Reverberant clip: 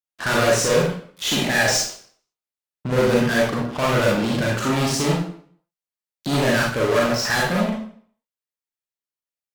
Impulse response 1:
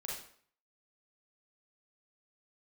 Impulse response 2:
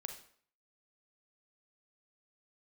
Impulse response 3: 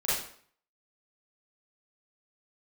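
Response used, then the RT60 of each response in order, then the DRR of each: 1; 0.55, 0.55, 0.55 seconds; −4.5, 5.0, −11.0 decibels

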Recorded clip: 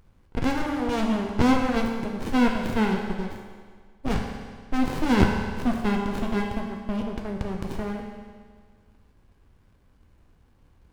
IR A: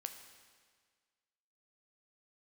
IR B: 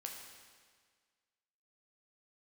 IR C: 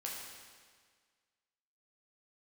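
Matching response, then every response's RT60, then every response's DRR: B; 1.7, 1.7, 1.7 seconds; 6.0, 0.5, −3.5 decibels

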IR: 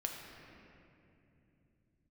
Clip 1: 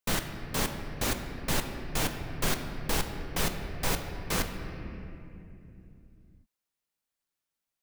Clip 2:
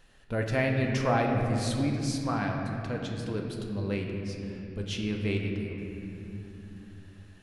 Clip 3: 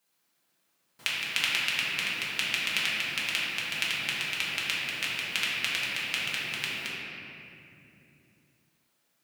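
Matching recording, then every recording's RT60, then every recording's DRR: 2; 2.8, 2.8, 2.8 seconds; 5.0, 0.5, −8.0 decibels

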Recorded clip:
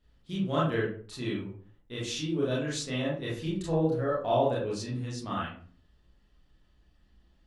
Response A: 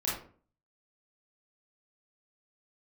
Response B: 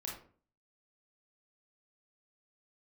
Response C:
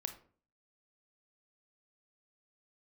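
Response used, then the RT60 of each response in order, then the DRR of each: A; 0.45, 0.45, 0.45 seconds; −7.0, −3.0, 7.0 decibels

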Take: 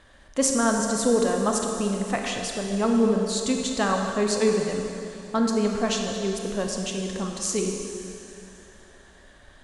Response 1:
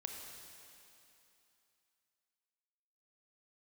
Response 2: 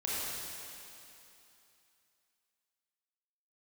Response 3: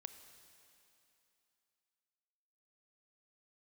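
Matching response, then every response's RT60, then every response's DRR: 1; 2.9, 2.9, 2.9 seconds; 1.5, −8.0, 9.0 decibels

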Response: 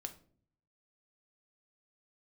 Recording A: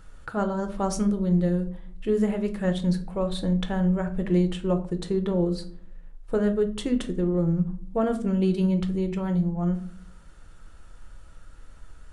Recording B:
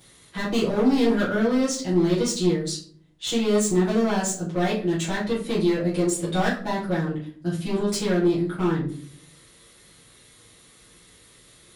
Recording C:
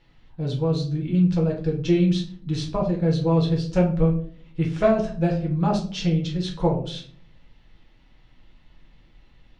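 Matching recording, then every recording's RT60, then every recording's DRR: A; 0.50, 0.50, 0.50 seconds; 6.5, −10.0, −1.5 decibels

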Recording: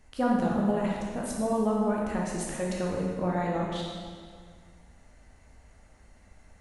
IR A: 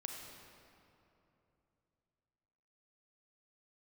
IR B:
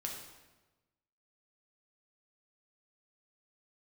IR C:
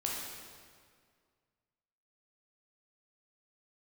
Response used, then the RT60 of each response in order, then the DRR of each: C; 2.9, 1.2, 2.0 seconds; 1.0, −0.5, −3.5 decibels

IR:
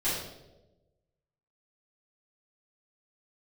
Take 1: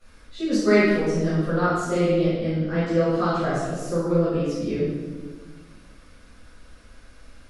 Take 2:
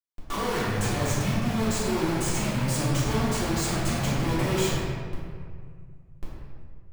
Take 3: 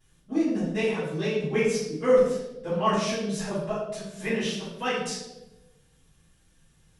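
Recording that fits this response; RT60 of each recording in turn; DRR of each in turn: 3; 1.4, 2.0, 1.1 seconds; −15.5, −9.5, −14.0 decibels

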